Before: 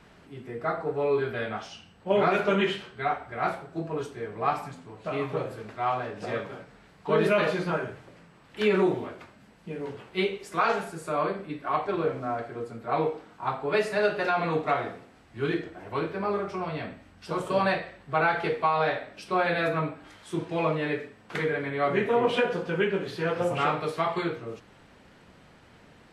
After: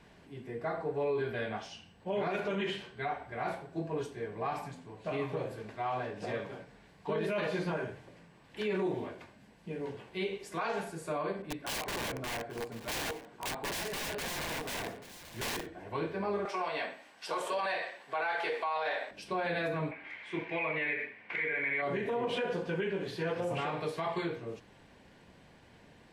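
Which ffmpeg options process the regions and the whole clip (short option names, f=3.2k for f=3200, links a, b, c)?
-filter_complex "[0:a]asettb=1/sr,asplit=3[a][b][c];[a]atrim=end=11.424[d];[b]atrim=start=11.42:end=15.67,asetpts=PTS-STARTPTS,afade=t=in:d=0.004:c=qsin,afade=t=out:st=4.246:d=0.004:c=qsin,aeval=exprs='(mod(21.1*val(0)+1,2)-1)/21.1':c=same,aecho=1:1:836:0.158,atrim=end_sample=187425,adynamicequalizer=threshold=0.00501:dfrequency=2900:dqfactor=0.7:tfrequency=2900:tqfactor=0.7:attack=5:release=100:ratio=0.375:range=3:mode=cutabove:tftype=highshelf[e];[c]atrim=start=15.666[f];[d][e]acrossfade=d=0.004:c1=hsin:c2=qsin[g];[g][f]acrossfade=d=0.004:c1=qsin:c2=hsin,asettb=1/sr,asplit=3[h][i][j];[h]atrim=end=16.454[k];[i]atrim=start=16.45:end=19.11,asetpts=PTS-STARTPTS,afade=t=in:d=0.004:c=qsin,afade=t=out:st=2.656:d=0.004:c=qsin,highpass=610,acontrast=84[l];[j]atrim=start=19.106[m];[k][l]acrossfade=d=0.004:c1=hsin:c2=qsin[n];[n][m]acrossfade=d=0.004:c1=qsin:c2=hsin,asettb=1/sr,asplit=3[o][p][q];[o]atrim=end=19.914[r];[p]atrim=start=19.91:end=21.82,asetpts=PTS-STARTPTS,afade=t=in:d=0.004:c=qsin,afade=t=out:st=1.906:d=0.004:c=qsin,lowpass=f=2.2k:t=q:w=6.8,aemphasis=mode=production:type=bsi[s];[q]atrim=start=21.816[t];[r][s]acrossfade=d=0.004:c1=hsin:c2=qsin[u];[u][t]acrossfade=d=0.004:c1=qsin:c2=hsin,bandreject=f=1.3k:w=5.6,alimiter=limit=-21.5dB:level=0:latency=1:release=69,volume=-3.5dB"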